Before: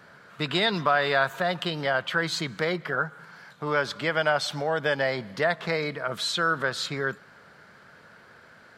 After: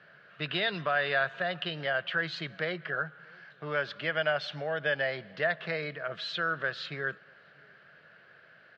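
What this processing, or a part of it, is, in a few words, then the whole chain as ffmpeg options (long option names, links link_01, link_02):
guitar cabinet: -filter_complex "[0:a]highpass=110,equalizer=frequency=150:width_type=q:width=4:gain=4,equalizer=frequency=240:width_type=q:width=4:gain=-8,equalizer=frequency=620:width_type=q:width=4:gain=5,equalizer=frequency=930:width_type=q:width=4:gain=-8,equalizer=frequency=1700:width_type=q:width=4:gain=7,equalizer=frequency=2800:width_type=q:width=4:gain=8,lowpass=frequency=4500:width=0.5412,lowpass=frequency=4500:width=1.3066,asplit=2[link_01][link_02];[link_02]adelay=641.4,volume=-28dB,highshelf=frequency=4000:gain=-14.4[link_03];[link_01][link_03]amix=inputs=2:normalize=0,volume=-8dB"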